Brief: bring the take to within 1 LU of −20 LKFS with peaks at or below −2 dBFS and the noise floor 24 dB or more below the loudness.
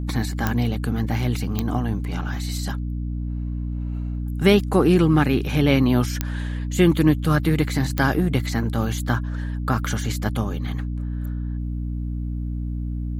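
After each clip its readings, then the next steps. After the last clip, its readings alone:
number of clicks 4; mains hum 60 Hz; hum harmonics up to 300 Hz; level of the hum −24 dBFS; integrated loudness −23.0 LKFS; sample peak −4.5 dBFS; target loudness −20.0 LKFS
→ click removal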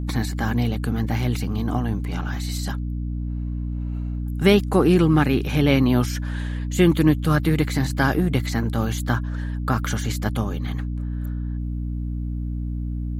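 number of clicks 0; mains hum 60 Hz; hum harmonics up to 300 Hz; level of the hum −24 dBFS
→ mains-hum notches 60/120/180/240/300 Hz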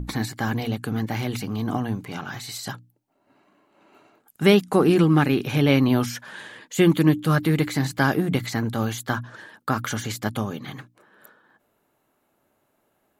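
mains hum none found; integrated loudness −23.0 LKFS; sample peak −4.0 dBFS; target loudness −20.0 LKFS
→ level +3 dB
brickwall limiter −2 dBFS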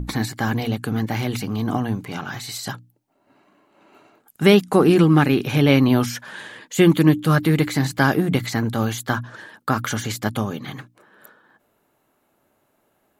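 integrated loudness −20.0 LKFS; sample peak −2.0 dBFS; background noise floor −67 dBFS

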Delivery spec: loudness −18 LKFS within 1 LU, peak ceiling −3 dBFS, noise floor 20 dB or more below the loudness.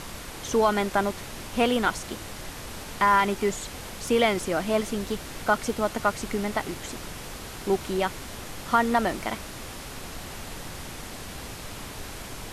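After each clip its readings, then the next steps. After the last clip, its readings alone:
background noise floor −39 dBFS; target noise floor −48 dBFS; integrated loudness −27.5 LKFS; sample peak −9.0 dBFS; target loudness −18.0 LKFS
→ noise reduction from a noise print 9 dB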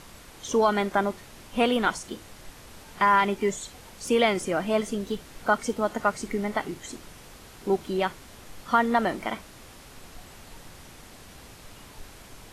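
background noise floor −48 dBFS; integrated loudness −26.0 LKFS; sample peak −9.5 dBFS; target loudness −18.0 LKFS
→ level +8 dB
brickwall limiter −3 dBFS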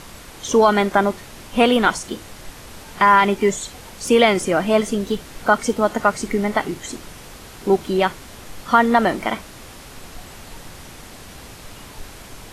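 integrated loudness −18.5 LKFS; sample peak −3.0 dBFS; background noise floor −40 dBFS

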